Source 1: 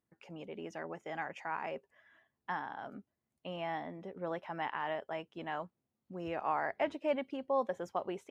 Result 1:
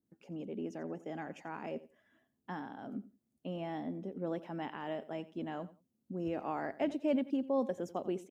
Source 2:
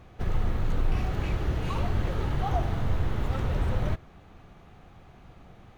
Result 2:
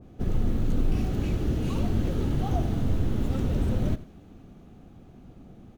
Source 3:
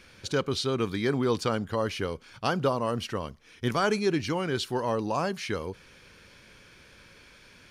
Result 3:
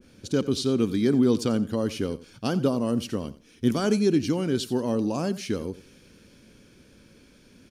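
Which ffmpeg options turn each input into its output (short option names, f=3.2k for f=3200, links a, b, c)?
-af "equalizer=f=250:t=o:w=1:g=10,equalizer=f=1k:t=o:w=1:g=-7,equalizer=f=2k:t=o:w=1:g=-8,equalizer=f=4k:t=o:w=1:g=-4,aecho=1:1:88|176:0.141|0.0283,adynamicequalizer=threshold=0.00562:dfrequency=1700:dqfactor=0.7:tfrequency=1700:tqfactor=0.7:attack=5:release=100:ratio=0.375:range=2.5:mode=boostabove:tftype=highshelf"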